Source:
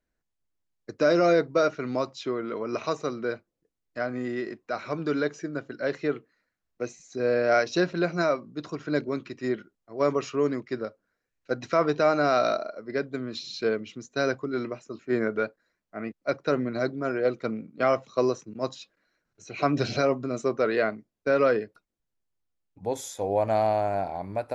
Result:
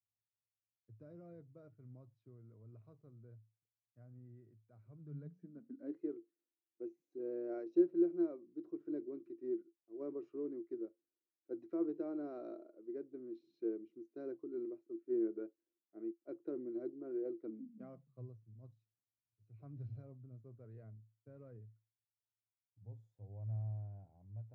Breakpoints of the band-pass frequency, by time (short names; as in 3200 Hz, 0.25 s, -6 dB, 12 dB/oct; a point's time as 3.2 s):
band-pass, Q 16
4.89 s 110 Hz
6.01 s 340 Hz
17.43 s 340 Hz
18.28 s 110 Hz